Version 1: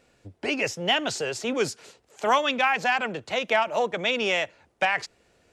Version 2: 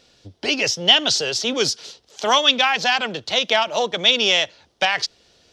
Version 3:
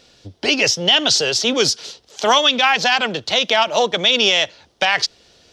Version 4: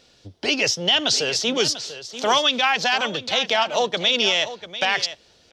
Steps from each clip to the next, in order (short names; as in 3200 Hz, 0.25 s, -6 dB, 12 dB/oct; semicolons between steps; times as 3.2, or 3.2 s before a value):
band shelf 4300 Hz +12.5 dB 1.2 oct; gain +3 dB
limiter -8.5 dBFS, peak gain reduction 7.5 dB; gain +4.5 dB
echo 0.693 s -13 dB; gain -4.5 dB